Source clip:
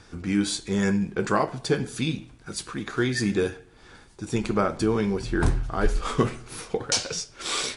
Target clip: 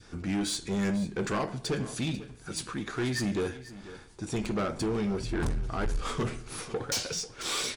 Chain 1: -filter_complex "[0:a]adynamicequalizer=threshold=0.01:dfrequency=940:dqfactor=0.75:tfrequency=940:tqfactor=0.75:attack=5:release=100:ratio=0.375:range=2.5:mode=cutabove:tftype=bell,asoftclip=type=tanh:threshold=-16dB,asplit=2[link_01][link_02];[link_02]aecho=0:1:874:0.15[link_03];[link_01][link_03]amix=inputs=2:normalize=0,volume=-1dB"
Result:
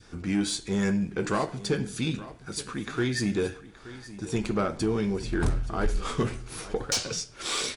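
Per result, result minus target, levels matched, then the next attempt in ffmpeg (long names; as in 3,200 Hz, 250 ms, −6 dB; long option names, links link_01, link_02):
echo 382 ms late; soft clipping: distortion −8 dB
-filter_complex "[0:a]adynamicequalizer=threshold=0.01:dfrequency=940:dqfactor=0.75:tfrequency=940:tqfactor=0.75:attack=5:release=100:ratio=0.375:range=2.5:mode=cutabove:tftype=bell,asoftclip=type=tanh:threshold=-16dB,asplit=2[link_01][link_02];[link_02]aecho=0:1:492:0.15[link_03];[link_01][link_03]amix=inputs=2:normalize=0,volume=-1dB"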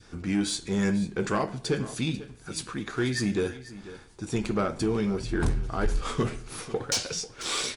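soft clipping: distortion −8 dB
-filter_complex "[0:a]adynamicequalizer=threshold=0.01:dfrequency=940:dqfactor=0.75:tfrequency=940:tqfactor=0.75:attack=5:release=100:ratio=0.375:range=2.5:mode=cutabove:tftype=bell,asoftclip=type=tanh:threshold=-24dB,asplit=2[link_01][link_02];[link_02]aecho=0:1:492:0.15[link_03];[link_01][link_03]amix=inputs=2:normalize=0,volume=-1dB"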